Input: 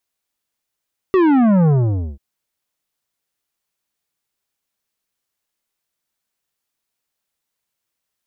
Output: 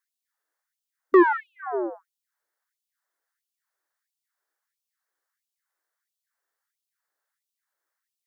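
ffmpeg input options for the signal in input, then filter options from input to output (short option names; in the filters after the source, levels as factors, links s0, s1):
-f lavfi -i "aevalsrc='0.266*clip((1.04-t)/0.5,0,1)*tanh(3.76*sin(2*PI*390*1.04/log(65/390)*(exp(log(65/390)*t/1.04)-1)))/tanh(3.76)':d=1.04:s=44100"
-filter_complex "[0:a]highshelf=f=2100:t=q:w=3:g=-6.5,acrossover=split=140|710[s0][s1][s2];[s0]acompressor=threshold=0.0224:ratio=5[s3];[s3][s1][s2]amix=inputs=3:normalize=0,afftfilt=real='re*gte(b*sr/1024,280*pow(2600/280,0.5+0.5*sin(2*PI*1.5*pts/sr)))':imag='im*gte(b*sr/1024,280*pow(2600/280,0.5+0.5*sin(2*PI*1.5*pts/sr)))':win_size=1024:overlap=0.75"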